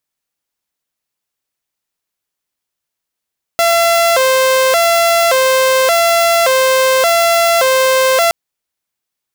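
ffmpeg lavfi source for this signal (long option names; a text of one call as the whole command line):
ffmpeg -f lavfi -i "aevalsrc='0.473*(2*mod((600*t+77/0.87*(0.5-abs(mod(0.87*t,1)-0.5))),1)-1)':duration=4.72:sample_rate=44100" out.wav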